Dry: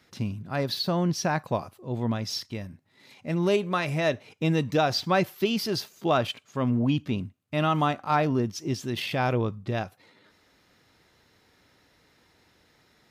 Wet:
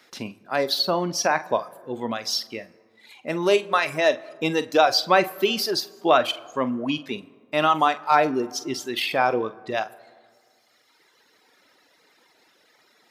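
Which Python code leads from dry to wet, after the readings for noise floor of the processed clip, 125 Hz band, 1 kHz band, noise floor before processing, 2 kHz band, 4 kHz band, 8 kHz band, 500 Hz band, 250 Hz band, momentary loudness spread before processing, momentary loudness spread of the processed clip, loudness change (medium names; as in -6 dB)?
-62 dBFS, -10.5 dB, +6.5 dB, -64 dBFS, +6.5 dB, +6.5 dB, +6.5 dB, +5.0 dB, -1.5 dB, 8 LU, 12 LU, +4.5 dB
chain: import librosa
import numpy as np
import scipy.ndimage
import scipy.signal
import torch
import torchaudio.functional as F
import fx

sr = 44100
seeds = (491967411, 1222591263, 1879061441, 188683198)

y = fx.dereverb_blind(x, sr, rt60_s=1.9)
y = scipy.signal.sosfilt(scipy.signal.butter(2, 360.0, 'highpass', fs=sr, output='sos'), y)
y = fx.doubler(y, sr, ms=45.0, db=-13.5)
y = fx.rev_plate(y, sr, seeds[0], rt60_s=1.9, hf_ratio=0.45, predelay_ms=0, drr_db=19.0)
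y = y * librosa.db_to_amplitude(7.0)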